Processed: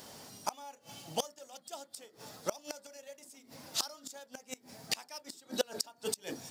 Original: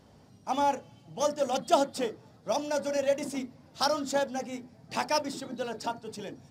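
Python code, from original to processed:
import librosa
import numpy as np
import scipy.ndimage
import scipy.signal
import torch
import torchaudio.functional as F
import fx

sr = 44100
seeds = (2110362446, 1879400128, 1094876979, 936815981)

y = fx.riaa(x, sr, side='recording')
y = fx.gate_flip(y, sr, shuts_db=-24.0, range_db=-30)
y = y * 10.0 ** (8.5 / 20.0)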